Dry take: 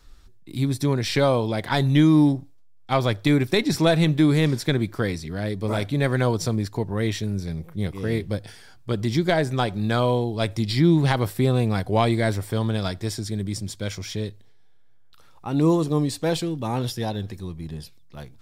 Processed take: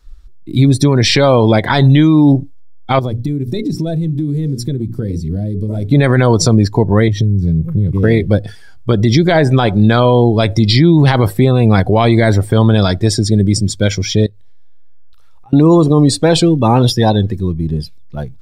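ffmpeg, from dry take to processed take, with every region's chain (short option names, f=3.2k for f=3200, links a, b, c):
-filter_complex "[0:a]asettb=1/sr,asplit=3[a][b][c];[a]atrim=end=2.994[d];[b]atrim=start=2.99:end=5.91,asetpts=PTS-STARTPTS,afade=t=in:d=0.004:c=qsin,afade=t=out:st=2.916:d=0.004:c=qsin,equalizer=f=1.4k:w=0.33:g=-13.5,bandreject=f=60:t=h:w=6,bandreject=f=120:t=h:w=6,bandreject=f=180:t=h:w=6,bandreject=f=240:t=h:w=6,bandreject=f=300:t=h:w=6,bandreject=f=360:t=h:w=6,bandreject=f=420:t=h:w=6,bandreject=f=480:t=h:w=6,bandreject=f=540:t=h:w=6,acompressor=threshold=-30dB:ratio=12:attack=3.2:release=140:knee=1:detection=peak[e];[c]atrim=start=5.906[f];[d][e]acrossfade=d=0.004:c1=hsin:c2=qsin[g];[g][f]acrossfade=d=0.004:c1=qsin:c2=hsin,asettb=1/sr,asplit=3[h][i][j];[h]atrim=end=7.084[k];[i]atrim=start=7.08:end=8.03,asetpts=PTS-STARTPTS,afade=t=in:d=0.004:c=qsin,afade=t=out:st=0.946:d=0.004:c=qsin,equalizer=f=120:w=1:g=14.5,acompressor=threshold=-26dB:ratio=12:attack=3.2:release=140:knee=1:detection=peak[l];[j]atrim=start=8.026[m];[k][l]acrossfade=d=0.004:c1=hsin:c2=qsin[n];[n][m]acrossfade=d=0.004:c1=qsin:c2=hsin,asettb=1/sr,asplit=3[o][p][q];[o]atrim=end=14.264[r];[p]atrim=start=14.26:end=15.53,asetpts=PTS-STARTPTS,afade=t=in:d=0.004:c=qsin,afade=t=out:st=1.266:d=0.004:c=qsin,equalizer=f=270:w=0.88:g=-7.5,acompressor=threshold=-48dB:ratio=12:attack=3.2:release=140:knee=1:detection=peak[s];[q]atrim=start=15.526[t];[r][s]acrossfade=d=0.004:c1=hsin:c2=qsin[u];[u][t]acrossfade=d=0.004:c1=qsin:c2=hsin,dynaudnorm=f=300:g=3:m=3dB,afftdn=nr=16:nf=-35,alimiter=level_in=14.5dB:limit=-1dB:release=50:level=0:latency=1,volume=-1dB"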